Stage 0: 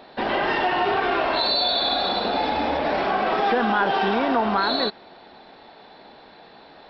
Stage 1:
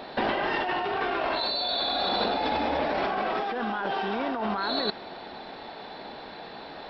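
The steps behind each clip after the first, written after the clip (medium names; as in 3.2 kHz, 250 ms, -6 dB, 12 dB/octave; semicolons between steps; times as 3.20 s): compressor with a negative ratio -28 dBFS, ratio -1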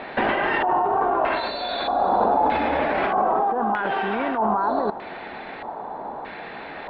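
dynamic bell 2.2 kHz, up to -5 dB, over -45 dBFS, Q 1.8; LFO low-pass square 0.8 Hz 970–2200 Hz; trim +4 dB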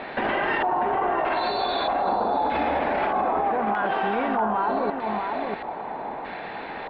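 echo from a far wall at 110 m, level -6 dB; peak limiter -15.5 dBFS, peak gain reduction 7 dB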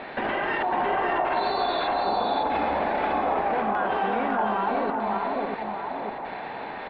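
delay 554 ms -3.5 dB; trim -2.5 dB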